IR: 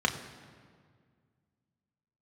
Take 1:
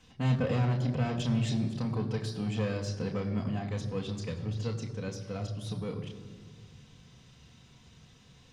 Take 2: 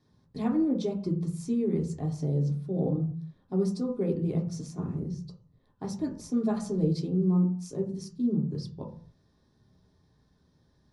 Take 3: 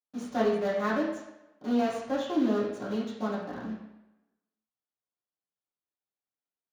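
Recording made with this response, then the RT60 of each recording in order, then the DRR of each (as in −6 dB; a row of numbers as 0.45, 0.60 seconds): 1; 1.9, 0.50, 0.90 seconds; 2.0, −1.0, −9.5 decibels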